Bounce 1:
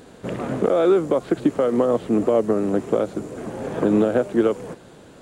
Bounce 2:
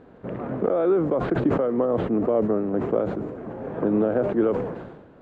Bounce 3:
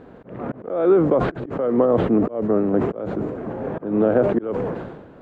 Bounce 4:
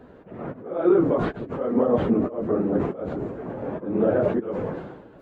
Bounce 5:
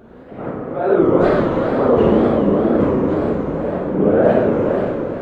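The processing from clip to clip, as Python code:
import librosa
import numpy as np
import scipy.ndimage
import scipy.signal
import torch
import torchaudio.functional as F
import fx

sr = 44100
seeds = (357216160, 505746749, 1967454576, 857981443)

y1 = scipy.signal.sosfilt(scipy.signal.butter(2, 1600.0, 'lowpass', fs=sr, output='sos'), x)
y1 = fx.sustainer(y1, sr, db_per_s=50.0)
y1 = F.gain(torch.from_numpy(y1), -4.0).numpy()
y2 = fx.auto_swell(y1, sr, attack_ms=296.0)
y2 = F.gain(torch.from_numpy(y2), 5.5).numpy()
y3 = fx.phase_scramble(y2, sr, seeds[0], window_ms=50)
y3 = F.gain(torch.from_numpy(y3), -3.5).numpy()
y4 = fx.hpss(y3, sr, part='percussive', gain_db=7)
y4 = fx.rev_schroeder(y4, sr, rt60_s=3.4, comb_ms=32, drr_db=-5.0)
y4 = fx.wow_flutter(y4, sr, seeds[1], rate_hz=2.1, depth_cents=150.0)
y4 = F.gain(torch.from_numpy(y4), -1.0).numpy()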